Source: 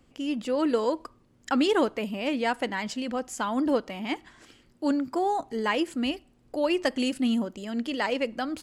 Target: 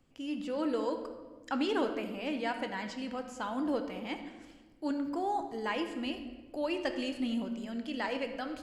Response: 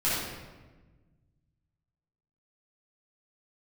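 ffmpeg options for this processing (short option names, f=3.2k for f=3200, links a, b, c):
-filter_complex "[0:a]acrossover=split=6300[a][b];[b]acompressor=threshold=-53dB:ratio=4:attack=1:release=60[c];[a][c]amix=inputs=2:normalize=0,asplit=2[d][e];[e]asubboost=boost=2.5:cutoff=97[f];[1:a]atrim=start_sample=2205[g];[f][g]afir=irnorm=-1:irlink=0,volume=-16dB[h];[d][h]amix=inputs=2:normalize=0,volume=-9dB"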